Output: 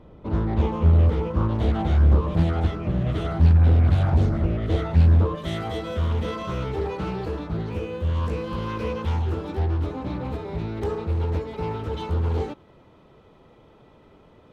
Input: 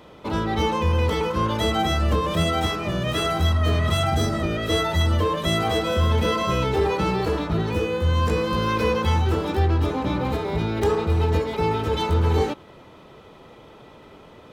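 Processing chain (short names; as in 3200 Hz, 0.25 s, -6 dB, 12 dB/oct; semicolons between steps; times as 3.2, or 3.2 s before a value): tilt -4 dB/oct, from 5.34 s -1.5 dB/oct; Doppler distortion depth 0.88 ms; gain -8.5 dB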